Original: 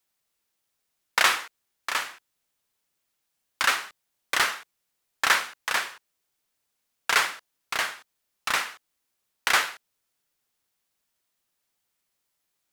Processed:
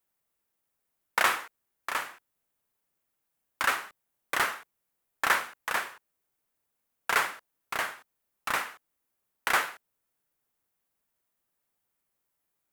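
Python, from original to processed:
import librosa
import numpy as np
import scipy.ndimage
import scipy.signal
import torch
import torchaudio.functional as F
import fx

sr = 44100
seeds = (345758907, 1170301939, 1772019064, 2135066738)

y = fx.peak_eq(x, sr, hz=4600.0, db=-10.0, octaves=2.1)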